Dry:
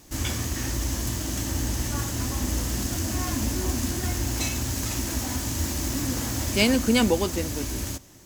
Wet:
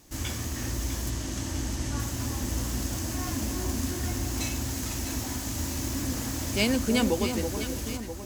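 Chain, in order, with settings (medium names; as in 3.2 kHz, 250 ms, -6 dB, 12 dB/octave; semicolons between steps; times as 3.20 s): 1.10–2.00 s: low-pass 9.1 kHz 12 dB/octave; on a send: echo whose repeats swap between lows and highs 326 ms, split 1.2 kHz, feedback 68%, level -6 dB; on the sum: trim -4.5 dB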